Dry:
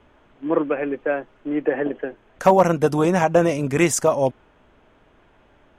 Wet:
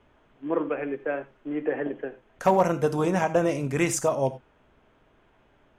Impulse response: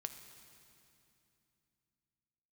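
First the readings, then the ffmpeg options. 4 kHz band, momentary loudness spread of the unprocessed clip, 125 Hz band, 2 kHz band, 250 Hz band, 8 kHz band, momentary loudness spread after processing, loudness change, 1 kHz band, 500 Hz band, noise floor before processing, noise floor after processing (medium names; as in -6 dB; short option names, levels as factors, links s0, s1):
-6.0 dB, 11 LU, -5.0 dB, -5.5 dB, -6.0 dB, -5.5 dB, 12 LU, -6.0 dB, -5.5 dB, -6.0 dB, -57 dBFS, -63 dBFS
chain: -filter_complex "[1:a]atrim=start_sample=2205,afade=t=out:st=0.15:d=0.01,atrim=end_sample=7056[s0];[0:a][s0]afir=irnorm=-1:irlink=0,volume=0.75"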